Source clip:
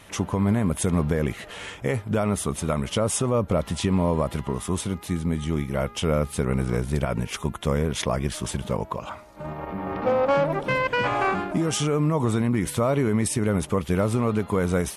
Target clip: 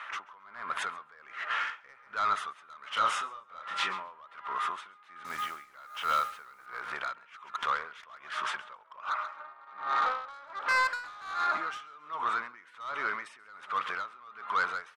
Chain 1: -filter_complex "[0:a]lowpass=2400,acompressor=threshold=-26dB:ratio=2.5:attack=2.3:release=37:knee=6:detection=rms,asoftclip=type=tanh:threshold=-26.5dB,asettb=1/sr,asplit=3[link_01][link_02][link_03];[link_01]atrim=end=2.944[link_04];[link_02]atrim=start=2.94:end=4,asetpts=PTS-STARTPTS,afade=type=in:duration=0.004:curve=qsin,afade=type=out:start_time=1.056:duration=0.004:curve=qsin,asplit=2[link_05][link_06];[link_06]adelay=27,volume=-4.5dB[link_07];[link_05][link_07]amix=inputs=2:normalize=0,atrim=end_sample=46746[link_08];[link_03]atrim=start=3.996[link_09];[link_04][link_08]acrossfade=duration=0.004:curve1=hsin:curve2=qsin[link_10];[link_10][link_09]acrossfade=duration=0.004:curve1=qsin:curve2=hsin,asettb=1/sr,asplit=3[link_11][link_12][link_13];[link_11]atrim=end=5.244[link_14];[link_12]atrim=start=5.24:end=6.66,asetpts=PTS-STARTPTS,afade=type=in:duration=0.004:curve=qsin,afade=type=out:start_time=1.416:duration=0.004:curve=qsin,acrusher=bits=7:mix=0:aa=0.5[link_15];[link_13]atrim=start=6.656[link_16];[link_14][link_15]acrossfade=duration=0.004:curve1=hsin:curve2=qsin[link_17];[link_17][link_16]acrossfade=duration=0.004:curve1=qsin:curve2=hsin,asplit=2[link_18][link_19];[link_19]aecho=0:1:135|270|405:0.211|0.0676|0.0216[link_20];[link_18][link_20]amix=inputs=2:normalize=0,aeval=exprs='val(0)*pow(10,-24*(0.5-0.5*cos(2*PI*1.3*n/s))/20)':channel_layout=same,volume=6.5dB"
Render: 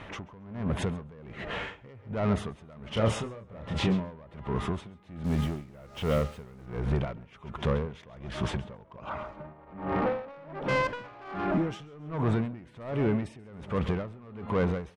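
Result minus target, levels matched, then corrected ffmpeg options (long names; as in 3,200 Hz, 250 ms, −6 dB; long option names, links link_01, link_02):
1,000 Hz band −7.5 dB
-filter_complex "[0:a]lowpass=2400,acompressor=threshold=-26dB:ratio=2.5:attack=2.3:release=37:knee=6:detection=rms,highpass=frequency=1300:width_type=q:width=3.8,asoftclip=type=tanh:threshold=-26.5dB,asettb=1/sr,asplit=3[link_01][link_02][link_03];[link_01]atrim=end=2.944[link_04];[link_02]atrim=start=2.94:end=4,asetpts=PTS-STARTPTS,afade=type=in:duration=0.004:curve=qsin,afade=type=out:start_time=1.056:duration=0.004:curve=qsin,asplit=2[link_05][link_06];[link_06]adelay=27,volume=-4.5dB[link_07];[link_05][link_07]amix=inputs=2:normalize=0,atrim=end_sample=46746[link_08];[link_03]atrim=start=3.996[link_09];[link_04][link_08]acrossfade=duration=0.004:curve1=hsin:curve2=qsin[link_10];[link_10][link_09]acrossfade=duration=0.004:curve1=qsin:curve2=hsin,asettb=1/sr,asplit=3[link_11][link_12][link_13];[link_11]atrim=end=5.244[link_14];[link_12]atrim=start=5.24:end=6.66,asetpts=PTS-STARTPTS,afade=type=in:duration=0.004:curve=qsin,afade=type=out:start_time=1.416:duration=0.004:curve=qsin,acrusher=bits=7:mix=0:aa=0.5[link_15];[link_13]atrim=start=6.656[link_16];[link_14][link_15]acrossfade=duration=0.004:curve1=hsin:curve2=qsin[link_17];[link_17][link_16]acrossfade=duration=0.004:curve1=qsin:curve2=hsin,asplit=2[link_18][link_19];[link_19]aecho=0:1:135|270|405:0.211|0.0676|0.0216[link_20];[link_18][link_20]amix=inputs=2:normalize=0,aeval=exprs='val(0)*pow(10,-24*(0.5-0.5*cos(2*PI*1.3*n/s))/20)':channel_layout=same,volume=6.5dB"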